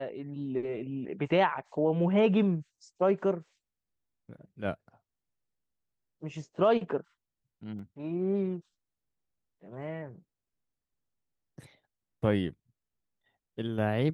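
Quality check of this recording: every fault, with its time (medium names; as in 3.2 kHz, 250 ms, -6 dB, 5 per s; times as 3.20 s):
7.79 s: dropout 3.5 ms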